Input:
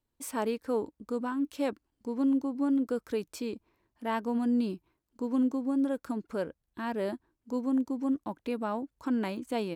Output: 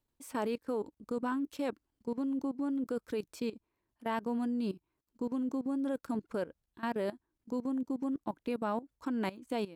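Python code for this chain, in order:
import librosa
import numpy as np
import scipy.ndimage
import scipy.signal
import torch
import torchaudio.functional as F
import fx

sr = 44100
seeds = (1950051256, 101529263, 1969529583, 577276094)

y = fx.level_steps(x, sr, step_db=17)
y = y * librosa.db_to_amplitude(1.5)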